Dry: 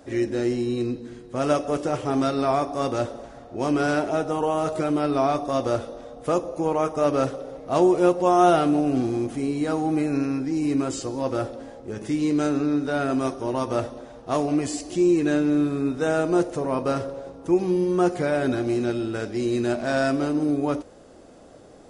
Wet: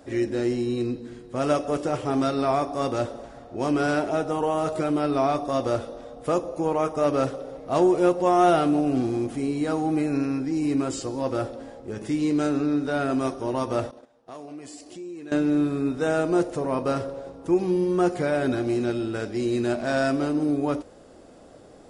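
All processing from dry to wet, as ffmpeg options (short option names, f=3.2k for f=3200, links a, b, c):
-filter_complex "[0:a]asettb=1/sr,asplit=3[a][b][c];[a]atrim=end=13.914[d];[b]atrim=start=13.91:end=15.32,asetpts=PTS-STARTPTS,afade=t=in:d=0.004:c=qsin,afade=t=out:st=1.406:d=0.004:c=qsin,highpass=f=210:p=1,agate=range=-17dB:threshold=-40dB:ratio=16:release=100:detection=peak,acompressor=threshold=-43dB:ratio=2.5:attack=3.2:release=140:knee=1:detection=peak[e];[c]atrim=start=15.316[f];[d][e]acrossfade=d=0.004:c1=hsin:c2=qsin[g];[g][f]acrossfade=d=0.004:c1=qsin:c2=hsin,bandreject=f=6.2k:w=21,acontrast=34,volume=-6dB"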